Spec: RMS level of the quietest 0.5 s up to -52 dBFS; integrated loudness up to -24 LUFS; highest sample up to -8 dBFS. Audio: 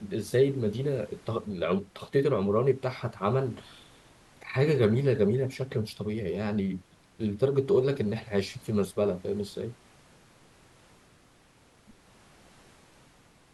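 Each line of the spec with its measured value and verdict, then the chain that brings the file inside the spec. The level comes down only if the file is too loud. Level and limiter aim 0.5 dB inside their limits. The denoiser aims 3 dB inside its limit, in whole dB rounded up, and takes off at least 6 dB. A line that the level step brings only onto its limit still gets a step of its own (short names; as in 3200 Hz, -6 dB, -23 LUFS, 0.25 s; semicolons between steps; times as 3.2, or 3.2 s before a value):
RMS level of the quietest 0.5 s -60 dBFS: OK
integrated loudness -28.5 LUFS: OK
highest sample -11.5 dBFS: OK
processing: none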